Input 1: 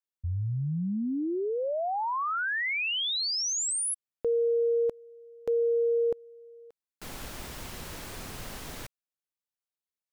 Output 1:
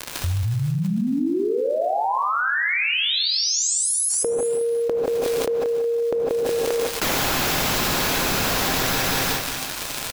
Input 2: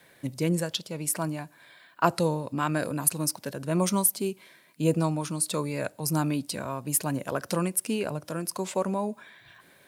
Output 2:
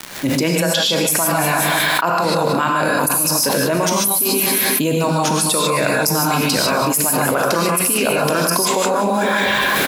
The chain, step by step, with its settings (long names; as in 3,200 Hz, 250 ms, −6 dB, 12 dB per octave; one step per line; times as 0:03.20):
fade in at the beginning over 1.17 s
parametric band 9,000 Hz −10.5 dB 0.21 octaves
harmonic and percussive parts rebalanced percussive +8 dB
low-shelf EQ 150 Hz −11 dB
surface crackle 190 per second −47 dBFS
on a send: repeating echo 183 ms, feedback 42%, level −14.5 dB
on the sum: reverb whose tail is shaped and stops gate 170 ms rising, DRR −1.5 dB
envelope flattener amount 100%
level −6 dB